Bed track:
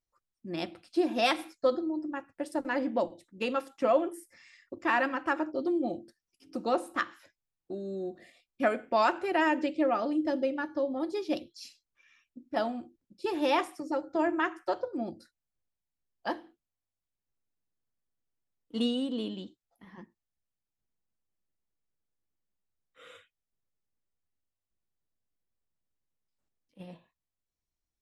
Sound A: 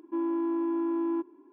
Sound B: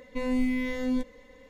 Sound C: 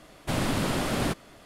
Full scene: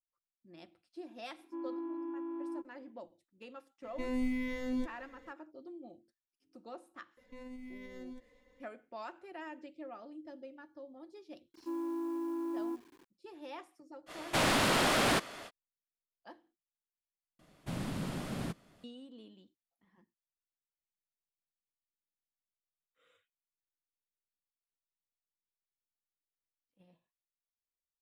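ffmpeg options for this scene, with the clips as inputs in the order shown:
ffmpeg -i bed.wav -i cue0.wav -i cue1.wav -i cue2.wav -filter_complex "[1:a]asplit=2[link_01][link_02];[2:a]asplit=2[link_03][link_04];[3:a]asplit=2[link_05][link_06];[0:a]volume=-19.5dB[link_07];[link_04]alimiter=level_in=3dB:limit=-24dB:level=0:latency=1:release=139,volume=-3dB[link_08];[link_02]acrusher=bits=8:mix=0:aa=0.000001[link_09];[link_05]asplit=2[link_10][link_11];[link_11]highpass=frequency=720:poles=1,volume=19dB,asoftclip=type=tanh:threshold=-14dB[link_12];[link_10][link_12]amix=inputs=2:normalize=0,lowpass=frequency=6300:poles=1,volume=-6dB[link_13];[link_06]equalizer=frequency=170:width=1.3:gain=8.5[link_14];[link_07]asplit=2[link_15][link_16];[link_15]atrim=end=17.394[link_17];[link_14]atrim=end=1.45,asetpts=PTS-STARTPTS,volume=-14.5dB[link_18];[link_16]atrim=start=18.836[link_19];[link_01]atrim=end=1.52,asetpts=PTS-STARTPTS,volume=-11.5dB,afade=type=in:duration=0.004:curve=hsin,afade=type=out:start_time=1.516:duration=0.004:curve=hsin,adelay=1400[link_20];[link_03]atrim=end=1.49,asetpts=PTS-STARTPTS,volume=-7dB,afade=type=in:duration=0.004:curve=hsin,afade=type=out:start_time=1.486:duration=0.004:curve=hsin,adelay=3830[link_21];[link_08]atrim=end=1.49,asetpts=PTS-STARTPTS,volume=-14dB,afade=type=in:duration=0.004:curve=hsin,afade=type=out:start_time=1.486:duration=0.004:curve=hsin,adelay=7170[link_22];[link_09]atrim=end=1.52,asetpts=PTS-STARTPTS,volume=-8dB,afade=type=in:duration=0.004:curve=hsin,afade=type=out:start_time=1.516:duration=0.004:curve=hsin,adelay=508914S[link_23];[link_13]atrim=end=1.45,asetpts=PTS-STARTPTS,volume=-5.5dB,afade=type=in:duration=0.05,afade=type=out:start_time=1.4:duration=0.05,adelay=14060[link_24];[link_17][link_18]acrossfade=duration=0.004:curve1=hsin:curve2=hsin[link_25];[link_25][link_19]acrossfade=duration=0.004:curve1=hsin:curve2=hsin[link_26];[link_26][link_20][link_21][link_22][link_23][link_24]amix=inputs=6:normalize=0" out.wav

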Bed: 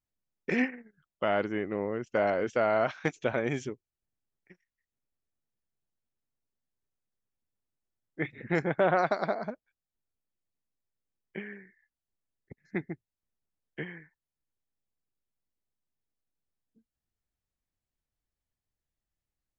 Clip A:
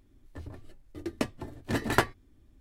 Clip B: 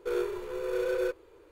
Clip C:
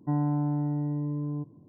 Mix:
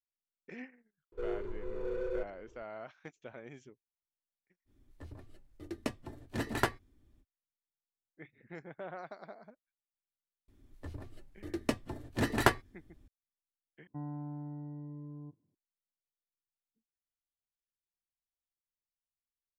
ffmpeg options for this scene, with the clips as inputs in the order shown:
ffmpeg -i bed.wav -i cue0.wav -i cue1.wav -i cue2.wav -filter_complex "[1:a]asplit=2[link_01][link_02];[0:a]volume=-19dB[link_03];[2:a]aemphasis=mode=reproduction:type=riaa[link_04];[3:a]agate=range=-11dB:threshold=-45dB:ratio=16:release=100:detection=peak[link_05];[link_03]asplit=2[link_06][link_07];[link_06]atrim=end=13.874[link_08];[link_05]atrim=end=1.68,asetpts=PTS-STARTPTS,volume=-14.5dB[link_09];[link_07]atrim=start=15.546[link_10];[link_04]atrim=end=1.51,asetpts=PTS-STARTPTS,volume=-10.5dB,afade=type=in:duration=0.004:curve=hsin,afade=type=out:start_time=1.506:duration=0.004:curve=hsin,adelay=1120[link_11];[link_01]atrim=end=2.6,asetpts=PTS-STARTPTS,volume=-6dB,afade=type=in:duration=0.05,afade=type=out:start_time=2.55:duration=0.05,adelay=205065S[link_12];[link_02]atrim=end=2.6,asetpts=PTS-STARTPTS,volume=-1.5dB,afade=type=in:duration=0.004:curve=hsin,afade=type=out:start_time=2.596:duration=0.004:curve=hsin,adelay=10480[link_13];[link_08][link_09]acrossfade=duration=0.004:curve1=hsin:curve2=hsin[link_14];[link_14][link_10]acrossfade=duration=0.004:curve1=hsin:curve2=hsin[link_15];[link_15][link_11][link_12][link_13]amix=inputs=4:normalize=0" out.wav

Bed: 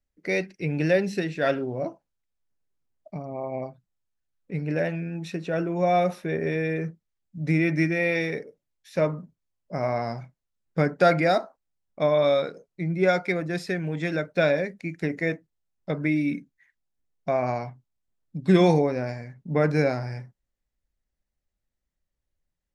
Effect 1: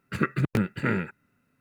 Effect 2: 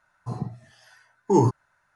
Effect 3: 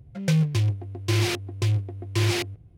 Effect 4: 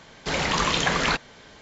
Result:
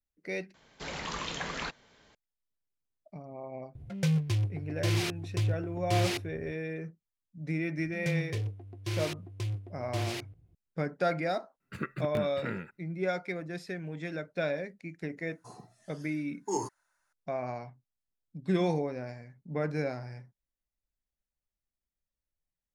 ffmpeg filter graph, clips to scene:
ffmpeg -i bed.wav -i cue0.wav -i cue1.wav -i cue2.wav -i cue3.wav -filter_complex "[3:a]asplit=2[link_01][link_02];[0:a]volume=-10dB[link_03];[link_01]acompressor=mode=upward:threshold=-31dB:ratio=2.5:attack=3.2:release=140:knee=2.83:detection=peak[link_04];[2:a]bass=frequency=250:gain=-15,treble=frequency=4000:gain=13[link_05];[link_03]asplit=2[link_06][link_07];[link_06]atrim=end=0.544[link_08];[4:a]atrim=end=1.61,asetpts=PTS-STARTPTS,volume=-13.5dB[link_09];[link_07]atrim=start=2.146[link_10];[link_04]atrim=end=2.77,asetpts=PTS-STARTPTS,volume=-6dB,afade=type=in:duration=0.004:curve=hsin,afade=type=out:start_time=2.766:duration=0.004:curve=hsin,adelay=3750[link_11];[link_02]atrim=end=2.77,asetpts=PTS-STARTPTS,volume=-11dB,afade=type=in:duration=0.004:curve=hsin,afade=type=out:start_time=2.766:duration=0.004:curve=hsin,adelay=343098S[link_12];[1:a]atrim=end=1.6,asetpts=PTS-STARTPTS,volume=-10.5dB,afade=type=in:duration=0.004:curve=hsin,afade=type=out:start_time=1.596:duration=0.004:curve=hsin,adelay=11600[link_13];[link_05]atrim=end=1.95,asetpts=PTS-STARTPTS,volume=-10.5dB,afade=type=in:duration=0.004:curve=hsin,afade=type=out:start_time=1.946:duration=0.004:curve=hsin,adelay=15180[link_14];[link_08][link_09]acrossfade=duration=0.004:curve1=hsin:curve2=hsin[link_15];[link_15][link_10]acrossfade=duration=0.004:curve1=hsin:curve2=hsin[link_16];[link_16][link_11][link_12][link_13][link_14]amix=inputs=5:normalize=0" out.wav

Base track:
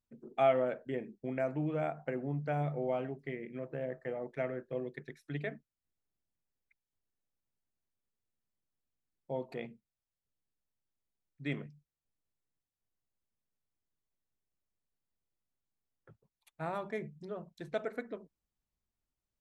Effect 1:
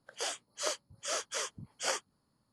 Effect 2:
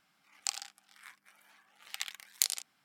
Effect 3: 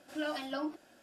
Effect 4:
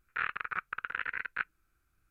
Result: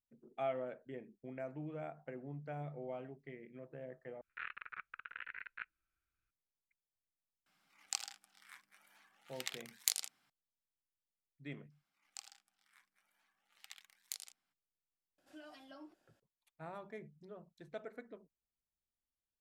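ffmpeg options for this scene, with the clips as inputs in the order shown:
ffmpeg -i bed.wav -i cue0.wav -i cue1.wav -i cue2.wav -i cue3.wav -filter_complex "[2:a]asplit=2[link_01][link_02];[0:a]volume=-10.5dB[link_03];[4:a]equalizer=frequency=2700:width=0.68:gain=8[link_04];[3:a]alimiter=level_in=4.5dB:limit=-24dB:level=0:latency=1:release=329,volume=-4.5dB[link_05];[link_03]asplit=2[link_06][link_07];[link_06]atrim=end=4.214[link_08];[link_04]atrim=end=2.1,asetpts=PTS-STARTPTS,volume=-17.5dB[link_09];[link_07]atrim=start=6.306[link_10];[link_01]atrim=end=2.84,asetpts=PTS-STARTPTS,volume=-4.5dB,afade=type=in:duration=0.004:curve=hsin,afade=type=out:start_time=2.836:duration=0.004:curve=hsin,adelay=328986S[link_11];[link_02]atrim=end=2.84,asetpts=PTS-STARTPTS,volume=-16dB,afade=type=in:duration=0.02,afade=type=out:start_time=2.82:duration=0.02,adelay=515970S[link_12];[link_05]atrim=end=1.02,asetpts=PTS-STARTPTS,volume=-16dB,afade=type=in:duration=0.004:curve=hsin,afade=type=out:start_time=1.016:duration=0.004:curve=hsin,adelay=15180[link_13];[link_08][link_09]acrossfade=duration=0.004:curve1=hsin:curve2=hsin[link_14];[link_14][link_10]acrossfade=duration=0.004:curve1=hsin:curve2=hsin[link_15];[link_15][link_11][link_12][link_13]amix=inputs=4:normalize=0" out.wav

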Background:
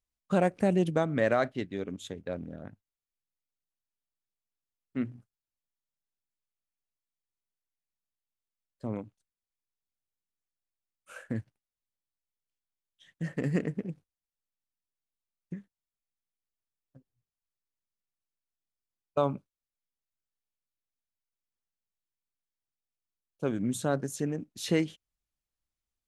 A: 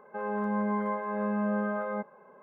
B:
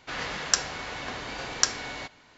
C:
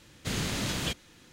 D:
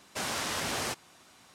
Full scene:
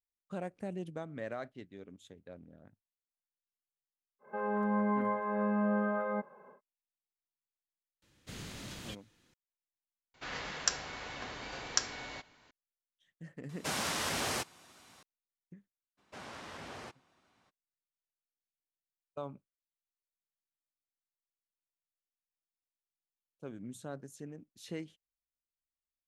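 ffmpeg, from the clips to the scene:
ffmpeg -i bed.wav -i cue0.wav -i cue1.wav -i cue2.wav -i cue3.wav -filter_complex "[4:a]asplit=2[link_01][link_02];[0:a]volume=-14.5dB[link_03];[link_02]aemphasis=mode=reproduction:type=75fm[link_04];[link_03]asplit=2[link_05][link_06];[link_05]atrim=end=10.144[link_07];[2:a]atrim=end=2.37,asetpts=PTS-STARTPTS,volume=-7.5dB[link_08];[link_06]atrim=start=12.506[link_09];[1:a]atrim=end=2.42,asetpts=PTS-STARTPTS,volume=-1.5dB,afade=type=in:duration=0.1,afade=type=out:start_time=2.32:duration=0.1,adelay=4190[link_10];[3:a]atrim=end=1.32,asetpts=PTS-STARTPTS,volume=-14dB,afade=type=in:duration=0.004:curve=hsin,afade=type=out:start_time=1.316:duration=0.004:curve=hsin,adelay=353682S[link_11];[link_01]atrim=end=1.54,asetpts=PTS-STARTPTS,volume=-1.5dB,afade=type=in:duration=0.004:curve=hsin,afade=type=out:start_time=1.536:duration=0.004:curve=hsin,adelay=13490[link_12];[link_04]atrim=end=1.54,asetpts=PTS-STARTPTS,volume=-12dB,afade=type=in:duration=0.02,afade=type=out:start_time=1.52:duration=0.02,adelay=15970[link_13];[link_07][link_08]acrossfade=duration=0.004:curve1=hsin:curve2=hsin[link_14];[link_14][link_09]acrossfade=duration=0.004:curve1=hsin:curve2=hsin[link_15];[link_15][link_10][link_11][link_12][link_13]amix=inputs=5:normalize=0" out.wav

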